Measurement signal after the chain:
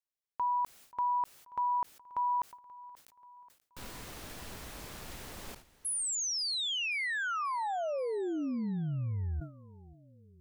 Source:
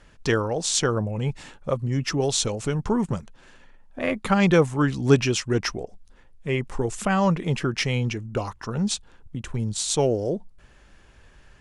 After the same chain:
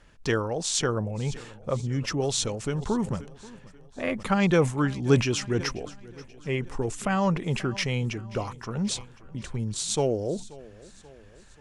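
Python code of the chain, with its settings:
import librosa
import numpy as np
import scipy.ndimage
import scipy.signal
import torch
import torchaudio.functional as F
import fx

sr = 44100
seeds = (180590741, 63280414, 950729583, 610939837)

p1 = x + fx.echo_feedback(x, sr, ms=533, feedback_pct=53, wet_db=-20.5, dry=0)
p2 = fx.sustainer(p1, sr, db_per_s=140.0)
y = p2 * 10.0 ** (-3.5 / 20.0)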